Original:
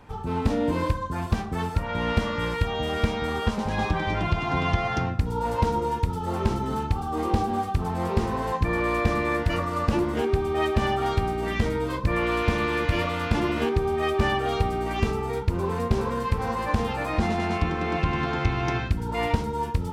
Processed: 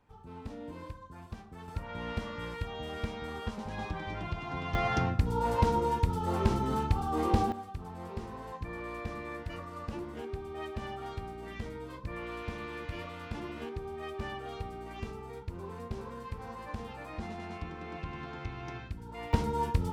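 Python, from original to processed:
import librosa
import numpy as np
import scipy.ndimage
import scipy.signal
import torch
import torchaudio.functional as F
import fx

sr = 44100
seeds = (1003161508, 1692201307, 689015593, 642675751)

y = fx.gain(x, sr, db=fx.steps((0.0, -19.0), (1.68, -12.0), (4.75, -3.0), (7.52, -15.5), (19.33, -3.0)))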